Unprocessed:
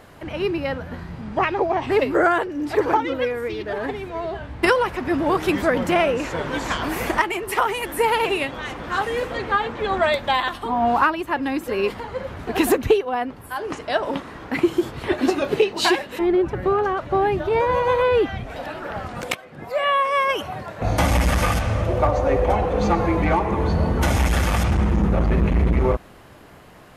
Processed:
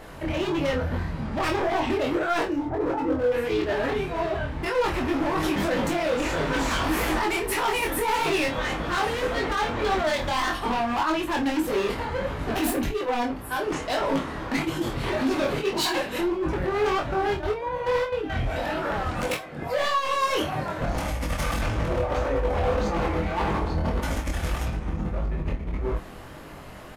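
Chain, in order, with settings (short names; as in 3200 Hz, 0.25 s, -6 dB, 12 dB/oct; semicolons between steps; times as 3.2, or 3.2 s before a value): low shelf 87 Hz +5 dB; negative-ratio compressor -20 dBFS, ratio -0.5; 17.23–18.33 step gate ".x.xx.x....xx" 173 bpm -12 dB; soft clip -17 dBFS, distortion -15 dB; 2.6–3.32 Gaussian blur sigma 7.1 samples; overloaded stage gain 23.5 dB; chorus 1.7 Hz, delay 18.5 ms, depth 6.2 ms; doubler 26 ms -7 dB; non-linear reverb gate 0.1 s falling, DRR 9 dB; gain +3 dB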